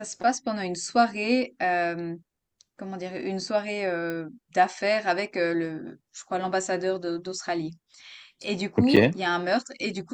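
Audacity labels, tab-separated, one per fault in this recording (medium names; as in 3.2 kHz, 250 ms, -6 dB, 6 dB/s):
4.100000	4.100000	pop -19 dBFS
8.960000	8.970000	dropout 6.6 ms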